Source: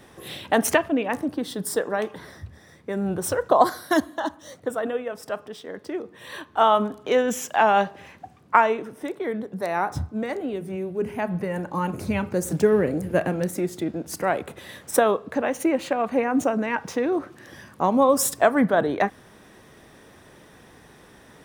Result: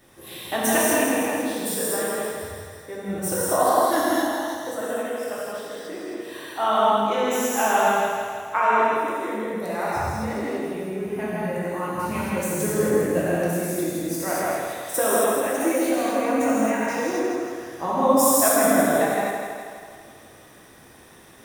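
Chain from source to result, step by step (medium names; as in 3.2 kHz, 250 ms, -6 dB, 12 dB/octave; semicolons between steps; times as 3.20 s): treble shelf 8.2 kHz +10 dB; hum notches 60/120/180/240 Hz; on a send: thinning echo 163 ms, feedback 60%, high-pass 160 Hz, level -5.5 dB; on the sum: gated-style reverb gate 300 ms flat, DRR -8 dB; trim -9 dB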